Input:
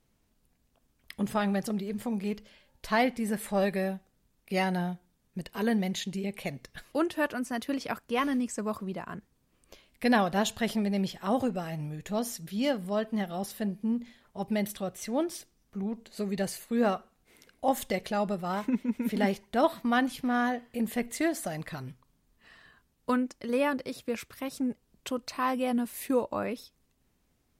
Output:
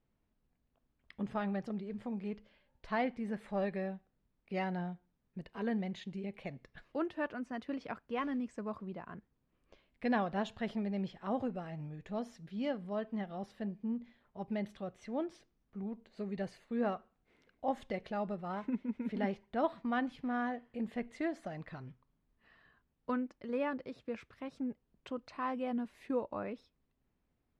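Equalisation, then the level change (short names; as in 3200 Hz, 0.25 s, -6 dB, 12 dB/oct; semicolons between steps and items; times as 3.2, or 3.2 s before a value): Bessel low-pass 2300 Hz, order 2; -7.5 dB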